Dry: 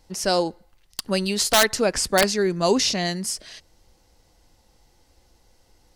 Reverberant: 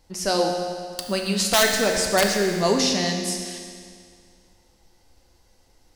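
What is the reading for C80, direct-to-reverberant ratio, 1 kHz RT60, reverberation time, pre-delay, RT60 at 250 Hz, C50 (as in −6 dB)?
4.5 dB, 1.5 dB, 2.1 s, 2.1 s, 11 ms, 2.1 s, 3.0 dB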